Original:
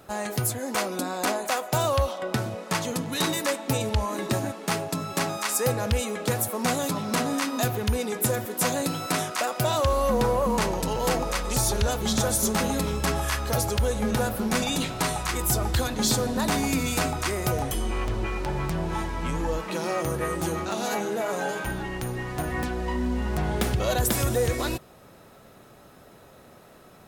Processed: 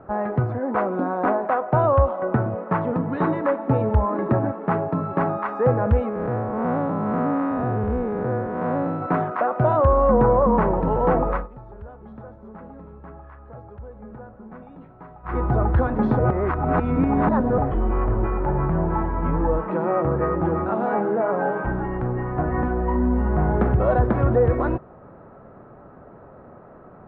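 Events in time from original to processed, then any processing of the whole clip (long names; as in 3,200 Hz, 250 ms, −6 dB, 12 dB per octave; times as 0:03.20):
0:06.09–0:09.02: spectrum smeared in time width 200 ms
0:11.35–0:15.36: duck −21 dB, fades 0.13 s
0:16.19–0:17.58: reverse
whole clip: low-pass filter 1,400 Hz 24 dB per octave; level +6.5 dB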